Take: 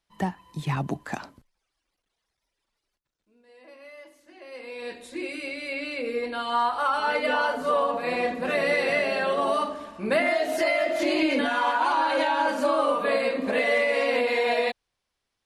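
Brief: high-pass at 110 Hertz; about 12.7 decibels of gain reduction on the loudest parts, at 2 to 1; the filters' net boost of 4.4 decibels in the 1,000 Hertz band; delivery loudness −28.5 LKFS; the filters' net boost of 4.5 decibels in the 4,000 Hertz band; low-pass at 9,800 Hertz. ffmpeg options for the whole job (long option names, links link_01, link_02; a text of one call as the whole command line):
ffmpeg -i in.wav -af "highpass=110,lowpass=9800,equalizer=frequency=1000:width_type=o:gain=5,equalizer=frequency=4000:width_type=o:gain=5.5,acompressor=threshold=-40dB:ratio=2,volume=5.5dB" out.wav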